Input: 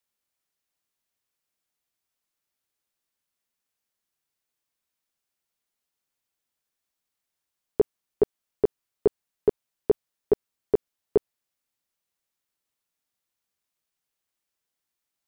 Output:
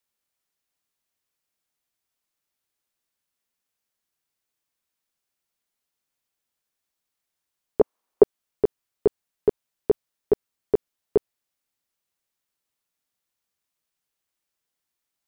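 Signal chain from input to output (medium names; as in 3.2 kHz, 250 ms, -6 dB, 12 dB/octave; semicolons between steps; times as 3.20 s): 7.81–8.23 s: graphic EQ 125/250/500/1000 Hz -11/+5/+7/+11 dB; trim +1 dB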